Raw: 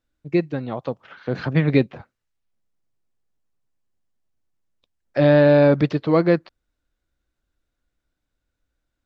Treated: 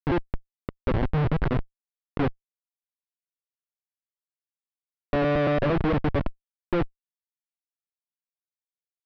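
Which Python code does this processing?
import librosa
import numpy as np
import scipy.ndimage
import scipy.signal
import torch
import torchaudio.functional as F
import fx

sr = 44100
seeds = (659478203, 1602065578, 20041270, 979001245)

y = fx.block_reorder(x, sr, ms=114.0, group=5)
y = fx.schmitt(y, sr, flips_db=-25.0)
y = scipy.ndimage.gaussian_filter1d(y, 2.9, mode='constant')
y = F.gain(torch.from_numpy(y), 1.5).numpy()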